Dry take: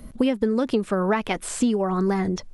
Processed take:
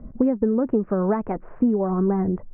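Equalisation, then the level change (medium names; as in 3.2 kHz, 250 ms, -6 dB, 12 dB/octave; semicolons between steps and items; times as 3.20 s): Gaussian low-pass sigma 6.2 samples; distance through air 480 m; +2.5 dB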